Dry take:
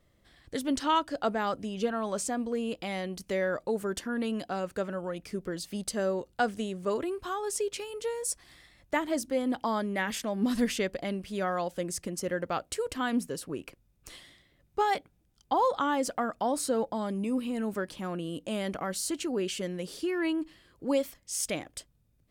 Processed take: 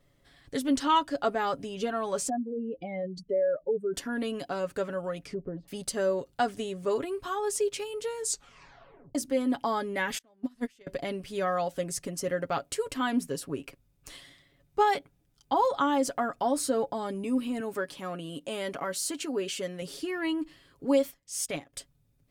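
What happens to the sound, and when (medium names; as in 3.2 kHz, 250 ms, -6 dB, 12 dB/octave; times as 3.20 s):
2.29–3.94 s: spectral contrast enhancement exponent 2.5
5.22–5.68 s: low-pass that closes with the level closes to 590 Hz, closed at -33 dBFS
8.17 s: tape stop 0.98 s
10.18–10.87 s: gate -24 dBFS, range -30 dB
17.60–19.82 s: bass shelf 130 Hz -12 dB
21.03–21.73 s: transient shaper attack -6 dB, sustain -11 dB
whole clip: comb 7.2 ms, depth 55%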